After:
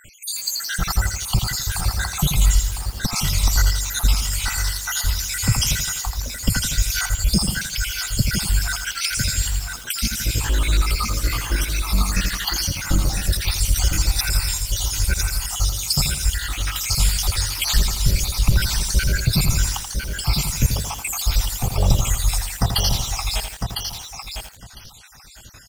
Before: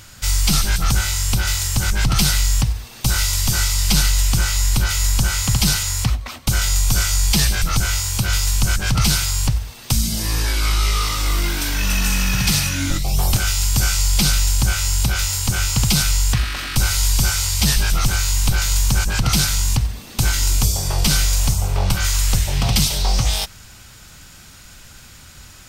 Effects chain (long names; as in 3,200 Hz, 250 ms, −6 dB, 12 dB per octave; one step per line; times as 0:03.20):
time-frequency cells dropped at random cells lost 76%
repeating echo 1,004 ms, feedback 15%, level −6 dB
feedback echo at a low word length 83 ms, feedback 55%, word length 6 bits, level −6.5 dB
level +2 dB